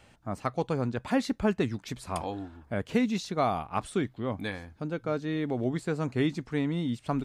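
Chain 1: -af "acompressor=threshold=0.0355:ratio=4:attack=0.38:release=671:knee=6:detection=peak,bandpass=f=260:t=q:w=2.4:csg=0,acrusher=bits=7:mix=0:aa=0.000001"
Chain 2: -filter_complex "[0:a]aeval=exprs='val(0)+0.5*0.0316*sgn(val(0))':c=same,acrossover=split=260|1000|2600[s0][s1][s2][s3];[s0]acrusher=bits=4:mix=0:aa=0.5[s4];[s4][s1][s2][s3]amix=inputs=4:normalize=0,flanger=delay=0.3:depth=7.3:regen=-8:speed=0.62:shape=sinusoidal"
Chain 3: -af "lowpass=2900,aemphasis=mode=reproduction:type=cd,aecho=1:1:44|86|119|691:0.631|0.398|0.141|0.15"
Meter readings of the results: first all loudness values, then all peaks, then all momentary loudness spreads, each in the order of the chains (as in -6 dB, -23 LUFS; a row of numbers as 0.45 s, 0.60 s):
-42.0 LUFS, -31.0 LUFS, -29.0 LUFS; -28.0 dBFS, -13.0 dBFS, -12.0 dBFS; 9 LU, 6 LU, 9 LU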